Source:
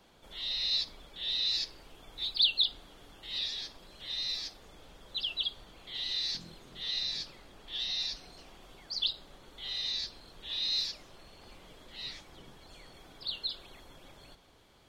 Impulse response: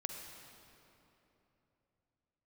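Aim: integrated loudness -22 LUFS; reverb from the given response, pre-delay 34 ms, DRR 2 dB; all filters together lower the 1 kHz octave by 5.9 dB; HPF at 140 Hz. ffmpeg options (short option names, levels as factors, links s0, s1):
-filter_complex "[0:a]highpass=140,equalizer=f=1000:t=o:g=-8,asplit=2[s0][s1];[1:a]atrim=start_sample=2205,adelay=34[s2];[s1][s2]afir=irnorm=-1:irlink=0,volume=0.841[s3];[s0][s3]amix=inputs=2:normalize=0,volume=2.99"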